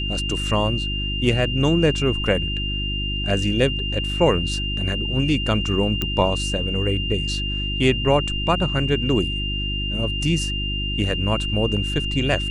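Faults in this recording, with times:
hum 50 Hz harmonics 7 -27 dBFS
whine 2.8 kHz -26 dBFS
6.02 s: pop -9 dBFS

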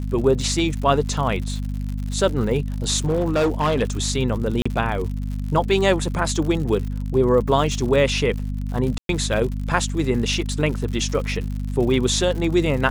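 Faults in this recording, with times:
crackle 91 per s -29 dBFS
hum 50 Hz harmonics 5 -26 dBFS
2.97–3.83 s: clipped -15.5 dBFS
4.62–4.66 s: dropout 35 ms
8.98–9.09 s: dropout 112 ms

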